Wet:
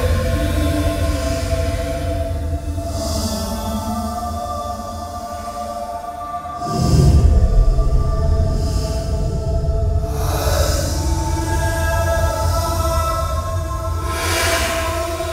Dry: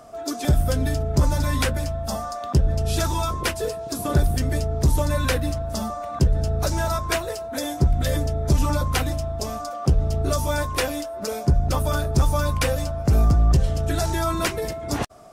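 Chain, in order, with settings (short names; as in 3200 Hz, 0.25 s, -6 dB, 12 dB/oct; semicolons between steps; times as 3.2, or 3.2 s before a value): non-linear reverb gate 0.33 s flat, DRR 6.5 dB; Paulstretch 8.2×, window 0.10 s, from 5.37; gain +3.5 dB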